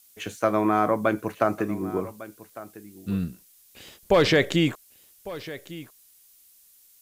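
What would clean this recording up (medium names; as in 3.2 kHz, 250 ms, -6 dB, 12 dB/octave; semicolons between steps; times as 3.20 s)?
noise print and reduce 13 dB; inverse comb 1152 ms -17 dB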